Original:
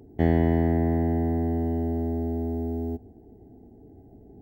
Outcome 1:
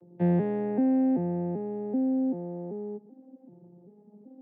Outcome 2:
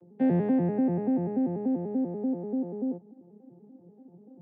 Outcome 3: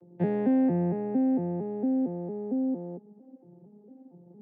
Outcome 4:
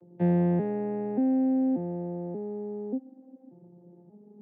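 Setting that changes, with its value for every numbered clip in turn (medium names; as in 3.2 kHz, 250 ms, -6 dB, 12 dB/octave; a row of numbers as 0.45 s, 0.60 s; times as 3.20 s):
vocoder on a broken chord, a note every: 386 ms, 97 ms, 228 ms, 584 ms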